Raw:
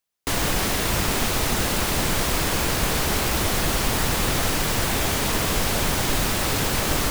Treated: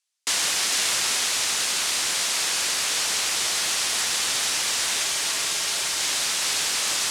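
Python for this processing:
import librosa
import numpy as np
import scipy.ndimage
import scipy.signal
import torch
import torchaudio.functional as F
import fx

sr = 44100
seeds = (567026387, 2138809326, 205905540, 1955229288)

y = fx.weighting(x, sr, curve='ITU-R 468')
y = fx.rider(y, sr, range_db=10, speed_s=2.0)
y = fx.notch_comb(y, sr, f0_hz=250.0, at=(5.04, 6.0))
y = y + 10.0 ** (-5.5 / 20.0) * np.pad(y, (int(450 * sr / 1000.0), 0))[:len(y)]
y = y * 10.0 ** (-7.5 / 20.0)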